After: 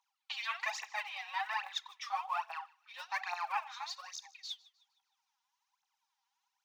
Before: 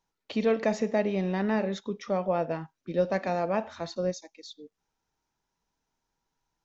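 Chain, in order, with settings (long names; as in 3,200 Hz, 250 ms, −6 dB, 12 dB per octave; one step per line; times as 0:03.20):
phase shifter 1.2 Hz, delay 4.4 ms, feedback 75%
Chebyshev high-pass with heavy ripple 760 Hz, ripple 6 dB
delay with a high-pass on its return 154 ms, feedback 41%, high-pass 1,700 Hz, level −21.5 dB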